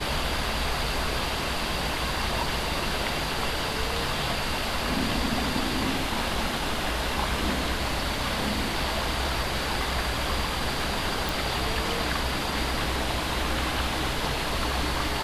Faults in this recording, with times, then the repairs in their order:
11.29 s: pop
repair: de-click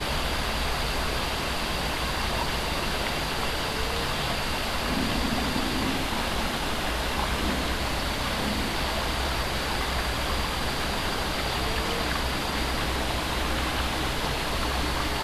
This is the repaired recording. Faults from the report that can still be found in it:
nothing left

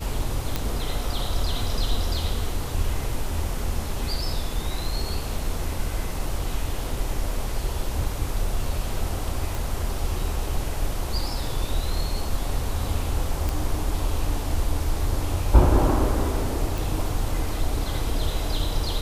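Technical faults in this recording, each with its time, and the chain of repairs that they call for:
0.56 s: pop -10 dBFS
9.55 s: pop
13.49 s: pop
16.78 s: pop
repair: de-click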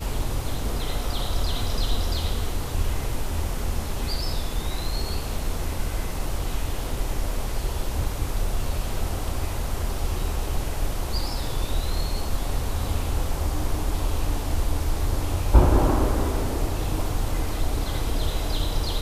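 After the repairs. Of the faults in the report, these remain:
nothing left

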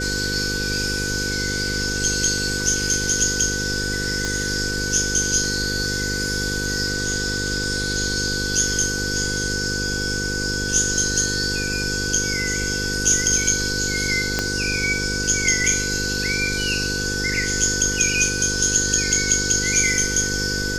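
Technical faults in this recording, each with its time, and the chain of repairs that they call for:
buzz 50 Hz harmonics 10 -28 dBFS
whine 1.5 kHz -26 dBFS
4.25 s: pop -12 dBFS
14.39 s: pop -6 dBFS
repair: de-click; de-hum 50 Hz, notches 10; band-stop 1.5 kHz, Q 30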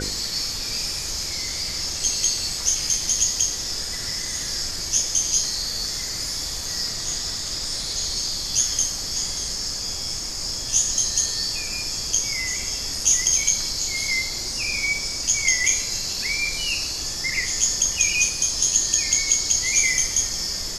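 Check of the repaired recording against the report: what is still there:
4.25 s: pop
14.39 s: pop

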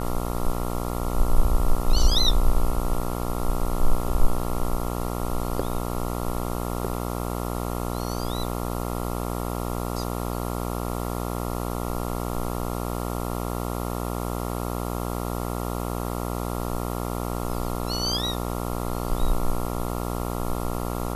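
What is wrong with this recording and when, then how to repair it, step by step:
buzz 60 Hz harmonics 23 -29 dBFS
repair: de-hum 60 Hz, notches 23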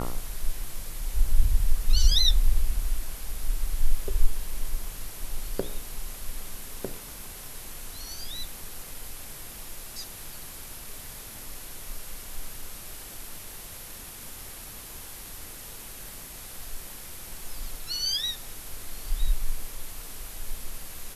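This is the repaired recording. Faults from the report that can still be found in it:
nothing left

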